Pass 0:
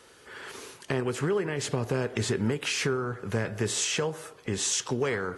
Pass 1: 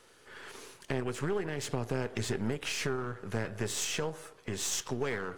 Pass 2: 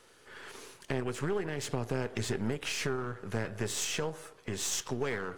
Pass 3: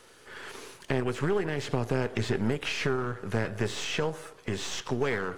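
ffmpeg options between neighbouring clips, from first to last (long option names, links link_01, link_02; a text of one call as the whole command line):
ffmpeg -i in.wav -af "aeval=exprs='if(lt(val(0),0),0.447*val(0),val(0))':channel_layout=same,volume=-3dB" out.wav
ffmpeg -i in.wav -af anull out.wav
ffmpeg -i in.wav -filter_complex "[0:a]acrossover=split=4500[link_01][link_02];[link_02]acompressor=threshold=-53dB:ratio=4:attack=1:release=60[link_03];[link_01][link_03]amix=inputs=2:normalize=0,volume=5dB" out.wav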